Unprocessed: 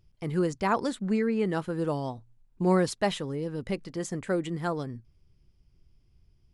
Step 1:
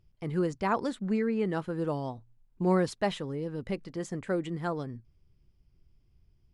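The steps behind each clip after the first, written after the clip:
high-shelf EQ 5,200 Hz −7.5 dB
level −2 dB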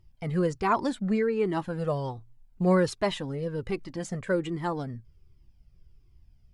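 flanger whose copies keep moving one way falling 1.3 Hz
level +8 dB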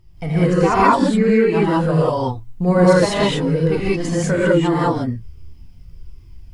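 in parallel at +0.5 dB: downward compressor, threshold −35 dBFS, peak gain reduction 16 dB
on the sum: reverb whose tail is shaped and stops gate 220 ms rising, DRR −8 dB
level +1.5 dB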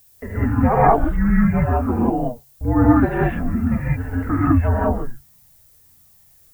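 single-sideband voice off tune −250 Hz 210–2,200 Hz
background noise violet −53 dBFS

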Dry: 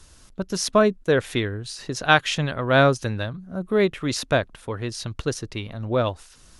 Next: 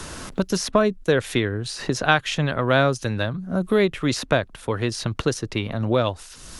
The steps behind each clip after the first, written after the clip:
multiband upward and downward compressor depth 70%
level +1 dB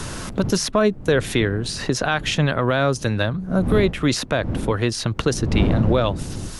wind on the microphone 190 Hz −29 dBFS
boost into a limiter +9.5 dB
level −6 dB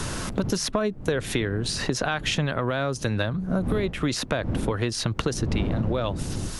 downward compressor, threshold −21 dBFS, peak gain reduction 9 dB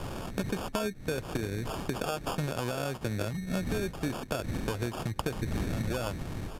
decimation without filtering 22×
downsampling to 32,000 Hz
level −7 dB

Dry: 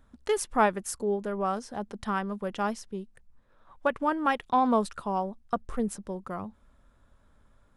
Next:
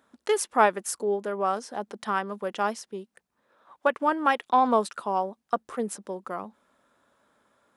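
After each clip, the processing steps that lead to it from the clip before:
high-pass filter 310 Hz 12 dB per octave
level +3.5 dB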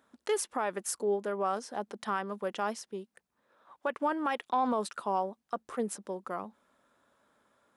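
brickwall limiter −17.5 dBFS, peak gain reduction 11.5 dB
level −3 dB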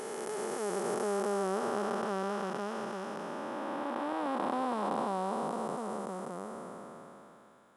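spectrum smeared in time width 1,360 ms
level +7.5 dB

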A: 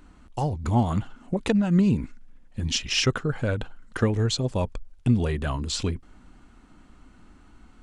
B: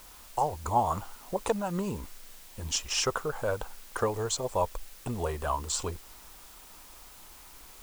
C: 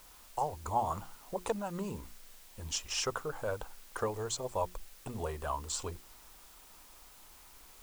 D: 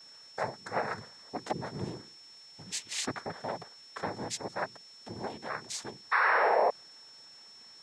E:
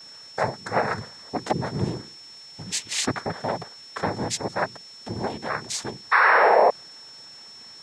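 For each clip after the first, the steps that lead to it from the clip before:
graphic EQ with 10 bands 125 Hz −10 dB, 250 Hz −10 dB, 500 Hz +4 dB, 1,000 Hz +11 dB, 2,000 Hz −7 dB, 4,000 Hz −5 dB, 8,000 Hz +9 dB; background noise white −48 dBFS; level −4 dB
mains-hum notches 60/120/180/240/300/360 Hz; level −5.5 dB
sound drawn into the spectrogram fall, 0:06.11–0:06.70, 620–1,300 Hz −25 dBFS; cochlear-implant simulation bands 6; steady tone 5,400 Hz −51 dBFS
low-shelf EQ 160 Hz +6.5 dB; level +8.5 dB

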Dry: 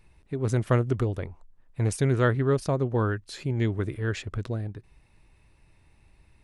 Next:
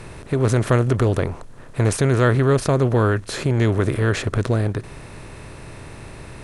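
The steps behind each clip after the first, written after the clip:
compressor on every frequency bin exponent 0.6
in parallel at +2 dB: brickwall limiter −18.5 dBFS, peak gain reduction 9 dB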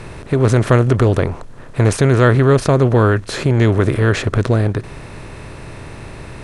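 high-shelf EQ 9,700 Hz −9.5 dB
level +5 dB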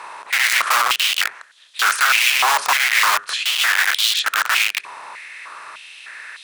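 four-comb reverb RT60 0.32 s, combs from 27 ms, DRR 17.5 dB
wrap-around overflow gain 12.5 dB
high-pass on a step sequencer 3.3 Hz 980–3,500 Hz
level −1 dB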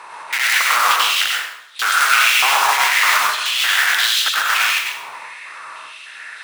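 dense smooth reverb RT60 0.73 s, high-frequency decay 0.85×, pre-delay 80 ms, DRR −2.5 dB
level −2.5 dB

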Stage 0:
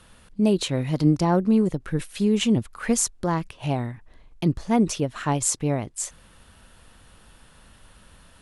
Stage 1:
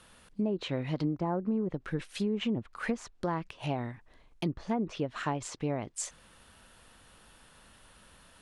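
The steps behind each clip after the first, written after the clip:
treble cut that deepens with the level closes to 1,300 Hz, closed at −16 dBFS
low-shelf EQ 170 Hz −8 dB
downward compressor 6 to 1, threshold −24 dBFS, peak gain reduction 8 dB
level −3 dB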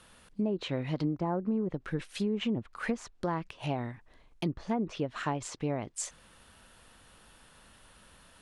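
no processing that can be heard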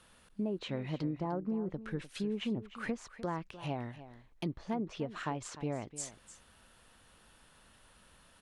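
single-tap delay 301 ms −14.5 dB
level −4.5 dB

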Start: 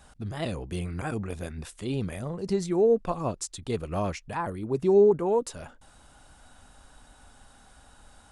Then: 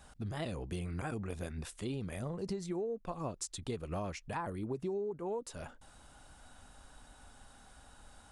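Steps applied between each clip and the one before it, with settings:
downward compressor 16 to 1, threshold −31 dBFS, peak gain reduction 17 dB
level −3 dB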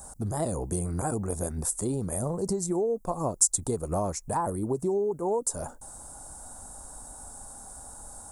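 drawn EQ curve 220 Hz 0 dB, 900 Hz +4 dB, 2,900 Hz −20 dB, 7,800 Hz +14 dB
level +8 dB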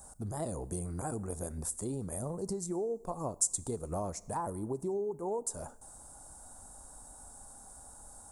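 four-comb reverb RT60 0.97 s, combs from 26 ms, DRR 19.5 dB
level −7.5 dB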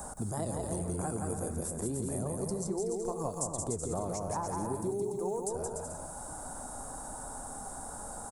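on a send: bouncing-ball delay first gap 170 ms, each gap 0.7×, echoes 5
on the sum: multiband upward and downward compressor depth 70%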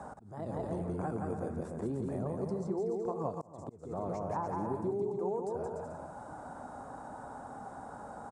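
volume swells 384 ms
band-pass filter 100–2,400 Hz

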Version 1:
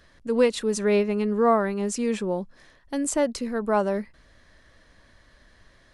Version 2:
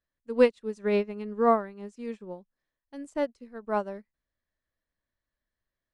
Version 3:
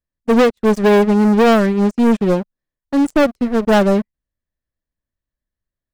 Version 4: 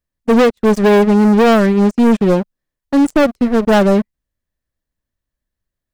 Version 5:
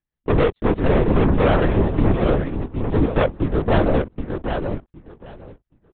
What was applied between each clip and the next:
high-shelf EQ 8,300 Hz −9.5 dB; expander for the loud parts 2.5 to 1, over −38 dBFS; level +1.5 dB
low-shelf EQ 380 Hz +11.5 dB; downward compressor 12 to 1, threshold −18 dBFS, peak gain reduction 10 dB; leveller curve on the samples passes 5; level +3.5 dB
brickwall limiter −11.5 dBFS, peak gain reduction 4 dB; level +4.5 dB
repeating echo 769 ms, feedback 17%, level −6.5 dB; linear-prediction vocoder at 8 kHz whisper; level −6.5 dB

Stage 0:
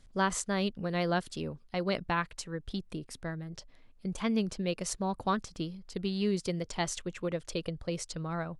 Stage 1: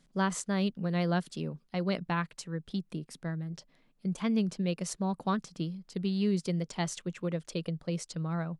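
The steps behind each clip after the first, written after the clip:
low shelf with overshoot 120 Hz −10 dB, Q 3
level −2.5 dB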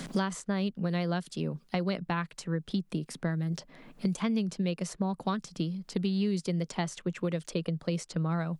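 multiband upward and downward compressor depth 100%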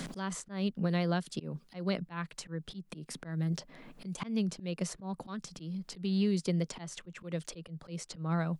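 volume swells 175 ms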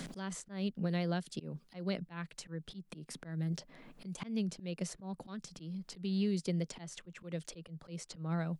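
dynamic equaliser 1,100 Hz, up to −5 dB, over −56 dBFS, Q 2.2
level −3.5 dB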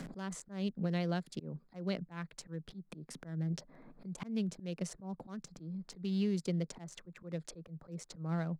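adaptive Wiener filter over 15 samples

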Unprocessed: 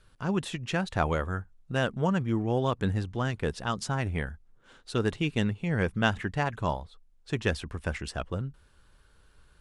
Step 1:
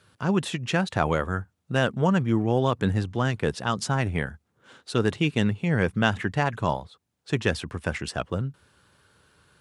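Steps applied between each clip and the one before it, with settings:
high-pass filter 89 Hz 24 dB per octave
in parallel at −2 dB: brickwall limiter −17 dBFS, peak gain reduction 9 dB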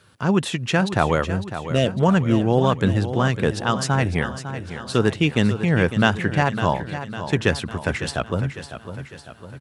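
gain on a spectral selection 0:01.26–0:02.00, 700–1,800 Hz −19 dB
on a send: repeating echo 553 ms, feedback 53%, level −11 dB
on the sum: level +4.5 dB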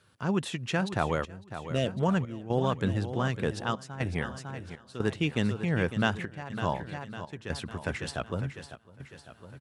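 gate pattern "xxxxx.xxx." 60 BPM −12 dB
level −9 dB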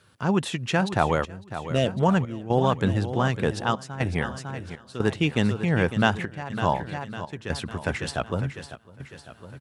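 dynamic equaliser 820 Hz, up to +4 dB, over −43 dBFS, Q 2.7
level +5 dB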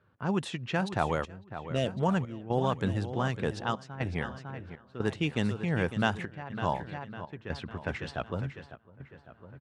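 low-pass that shuts in the quiet parts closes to 1,500 Hz, open at −18 dBFS
level −6.5 dB

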